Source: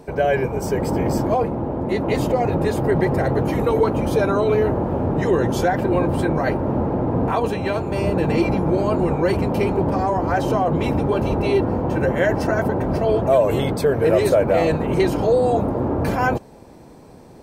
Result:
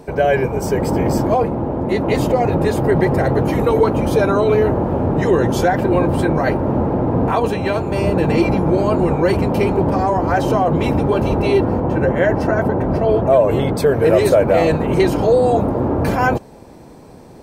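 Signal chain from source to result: 11.8–13.75 high shelf 3500 Hz -10 dB; gain +3.5 dB

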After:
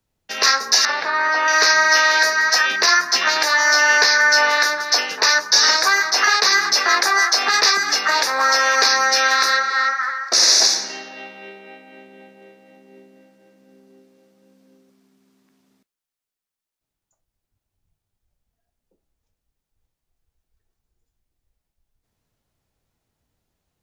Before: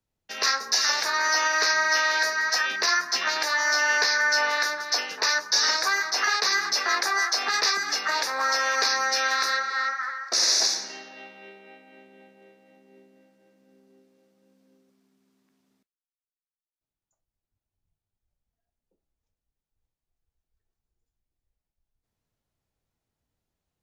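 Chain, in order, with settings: 0.85–1.48 air absorption 330 m; gain +8 dB

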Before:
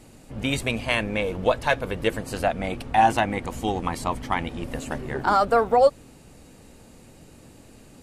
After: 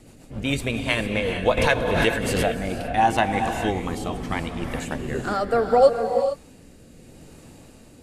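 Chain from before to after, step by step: rotary speaker horn 7.5 Hz, later 0.75 Hz, at 1.16; non-linear reverb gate 0.48 s rising, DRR 5.5 dB; 1.57–2.9 backwards sustainer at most 26 dB/s; gain +2.5 dB

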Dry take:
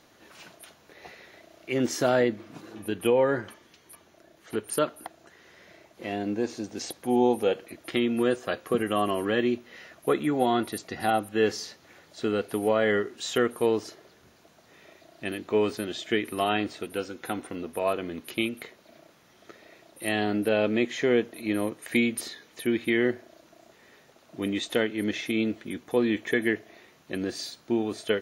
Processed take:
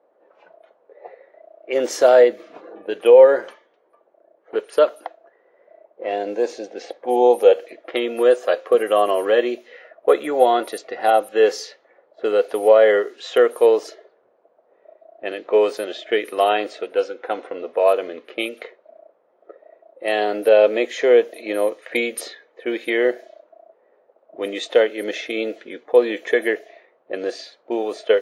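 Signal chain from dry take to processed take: low-pass opened by the level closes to 840 Hz, open at -24 dBFS; resonant high-pass 520 Hz, resonance Q 3.4; spectral noise reduction 8 dB; gain +4 dB

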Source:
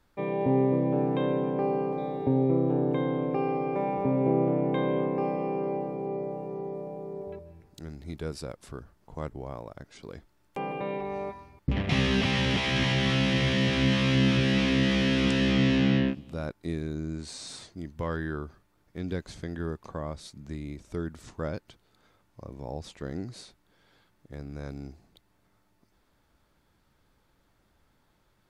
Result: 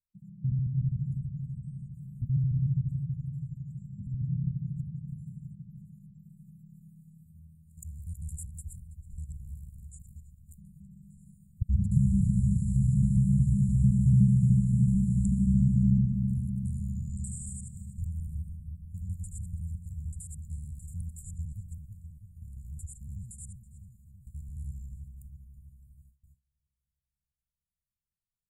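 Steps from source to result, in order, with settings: local time reversal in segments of 74 ms; spectral noise reduction 14 dB; tone controls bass +5 dB, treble 0 dB; darkening echo 0.326 s, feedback 62%, low-pass 1600 Hz, level -6 dB; gate with hold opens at -51 dBFS; brick-wall FIR band-stop 220–6900 Hz; mismatched tape noise reduction encoder only

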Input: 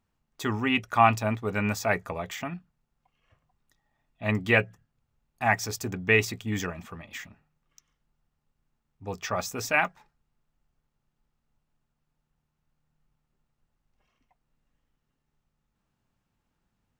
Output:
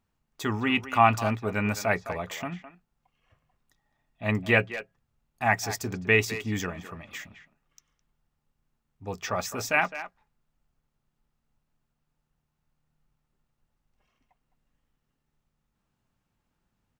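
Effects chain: speakerphone echo 0.21 s, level -12 dB

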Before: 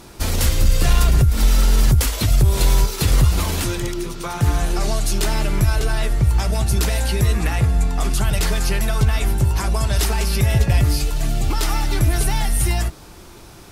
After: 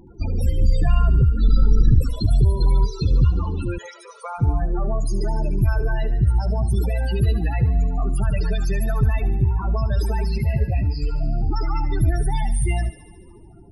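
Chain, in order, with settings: 1.46–2.27 octaver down 2 oct, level -2 dB; 3.78–4.39 steep high-pass 420 Hz 96 dB/oct; loudest bins only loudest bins 16; on a send: thinning echo 73 ms, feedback 75%, high-pass 1100 Hz, level -13.5 dB; 10.38–11.02 on the sum: ensemble effect; gain -1.5 dB

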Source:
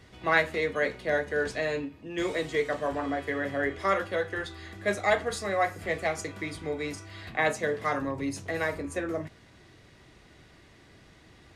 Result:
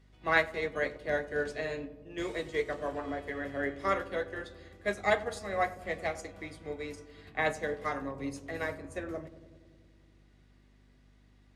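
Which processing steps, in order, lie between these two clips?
hum 50 Hz, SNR 16 dB; darkening echo 96 ms, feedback 85%, low-pass 950 Hz, level -10.5 dB; upward expander 1.5:1, over -45 dBFS; gain -2 dB

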